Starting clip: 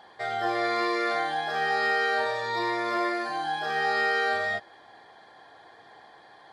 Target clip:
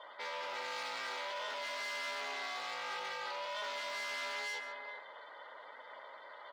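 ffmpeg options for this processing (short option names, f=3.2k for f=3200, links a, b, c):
-filter_complex "[0:a]asplit=2[a][b];[b]aecho=0:1:407:0.1[c];[a][c]amix=inputs=2:normalize=0,aeval=exprs='(tanh(126*val(0)+0.15)-tanh(0.15))/126':c=same,afftdn=nr=16:nf=-55,acrossover=split=570 5100:gain=0.251 1 0.224[d][e][f];[d][e][f]amix=inputs=3:normalize=0,aeval=exprs='val(0)*sin(2*PI*200*n/s)':c=same,highpass=440,aemphasis=mode=production:type=50kf,bandreject=f=1.7k:w=11,asplit=2[g][h];[h]aecho=0:1:140:0.211[i];[g][i]amix=inputs=2:normalize=0,volume=6.5dB"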